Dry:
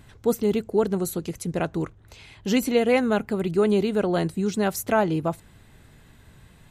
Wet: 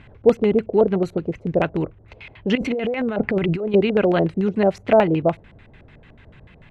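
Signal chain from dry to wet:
0:02.55–0:03.74: compressor whose output falls as the input rises −28 dBFS, ratio −1
auto-filter low-pass square 6.8 Hz 590–2,500 Hz
level +3.5 dB

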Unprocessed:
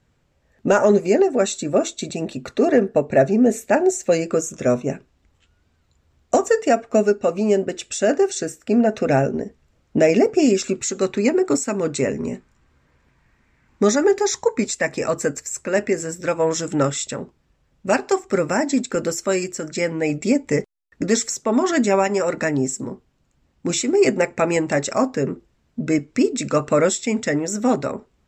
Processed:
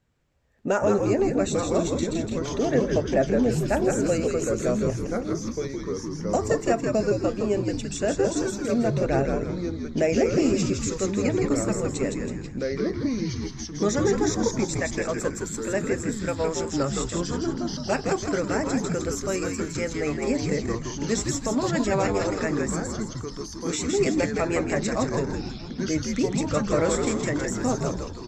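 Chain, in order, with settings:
delay with pitch and tempo change per echo 711 ms, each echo −3 semitones, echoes 3, each echo −6 dB
echo with shifted repeats 163 ms, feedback 44%, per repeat −94 Hz, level −4 dB
level −7.5 dB

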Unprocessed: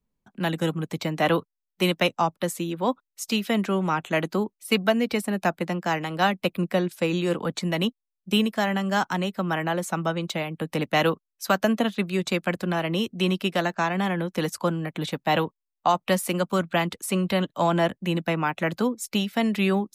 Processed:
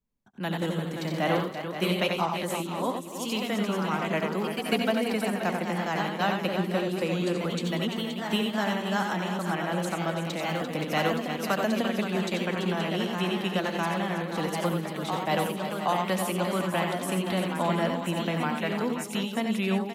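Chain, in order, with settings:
multi-tap delay 73/90/253/343/525/725 ms −11/−6/−19.5/−9/−10/−18 dB
delay with pitch and tempo change per echo 118 ms, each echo +1 semitone, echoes 2, each echo −6 dB
level −6 dB

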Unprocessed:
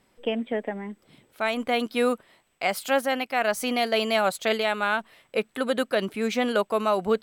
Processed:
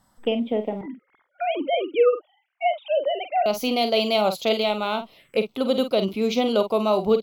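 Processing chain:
0:00.81–0:03.46: three sine waves on the formant tracks
phaser swept by the level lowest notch 410 Hz, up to 1,700 Hz, full sweep at −29.5 dBFS
double-tracking delay 47 ms −9.5 dB
level +4.5 dB

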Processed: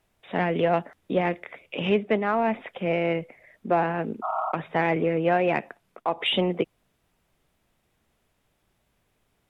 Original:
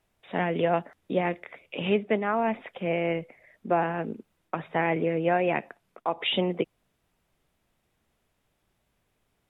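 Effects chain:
healed spectral selection 0:04.26–0:04.49, 610–1,400 Hz after
in parallel at −8 dB: soft clipping −21 dBFS, distortion −13 dB

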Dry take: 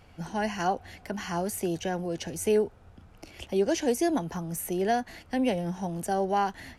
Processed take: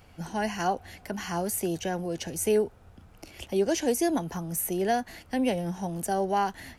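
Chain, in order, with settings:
high-shelf EQ 9,900 Hz +9.5 dB

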